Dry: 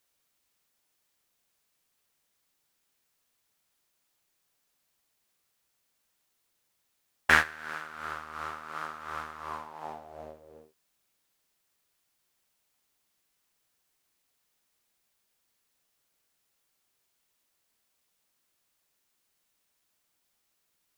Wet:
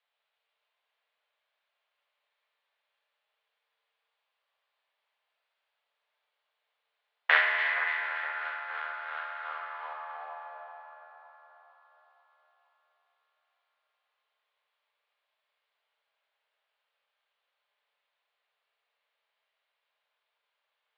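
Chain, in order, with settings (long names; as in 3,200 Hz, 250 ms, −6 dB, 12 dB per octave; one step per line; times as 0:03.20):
echo with a time of its own for lows and highs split 1,500 Hz, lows 468 ms, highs 288 ms, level −9 dB
feedback delay network reverb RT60 3.4 s, high-frequency decay 0.6×, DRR 0 dB
single-sideband voice off tune +150 Hz 360–3,600 Hz
level −1.5 dB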